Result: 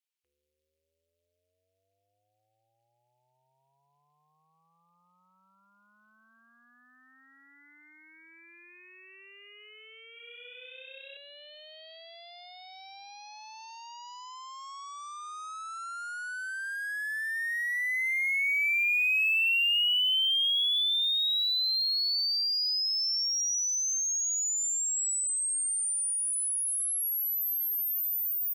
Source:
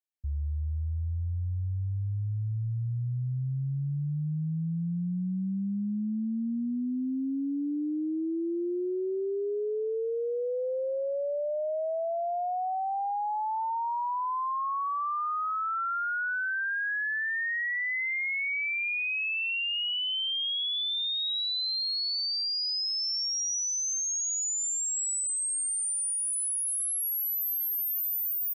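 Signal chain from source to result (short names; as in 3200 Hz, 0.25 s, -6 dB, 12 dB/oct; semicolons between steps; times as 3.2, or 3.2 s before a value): added harmonics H 3 -30 dB, 5 -22 dB, 6 -35 dB, 7 -28 dB, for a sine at -27 dBFS; resonant high-pass 2500 Hz, resonance Q 1.8; 10.1–11.17 flutter echo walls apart 10.9 m, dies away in 1.3 s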